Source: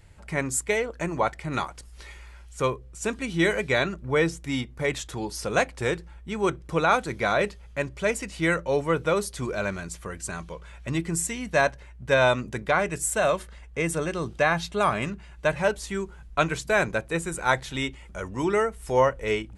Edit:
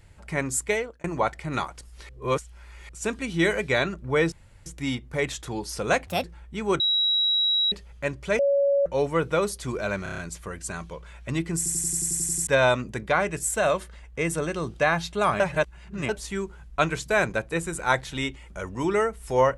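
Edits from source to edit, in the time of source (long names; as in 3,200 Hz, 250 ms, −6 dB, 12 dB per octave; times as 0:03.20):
0:00.73–0:01.04: fade out
0:02.09–0:02.89: reverse
0:04.32: splice in room tone 0.34 s
0:05.73–0:05.98: play speed 148%
0:06.54–0:07.46: beep over 3,870 Hz −19.5 dBFS
0:08.13–0:08.60: beep over 561 Hz −18 dBFS
0:09.77: stutter 0.03 s, 6 plays
0:11.16: stutter in place 0.09 s, 10 plays
0:14.99–0:15.68: reverse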